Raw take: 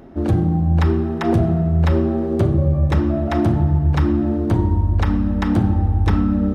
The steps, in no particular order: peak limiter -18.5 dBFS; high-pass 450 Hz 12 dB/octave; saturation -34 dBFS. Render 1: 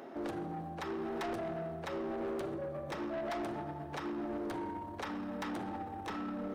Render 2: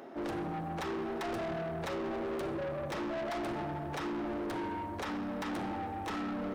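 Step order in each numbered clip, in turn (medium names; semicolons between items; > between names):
peak limiter > high-pass > saturation; high-pass > peak limiter > saturation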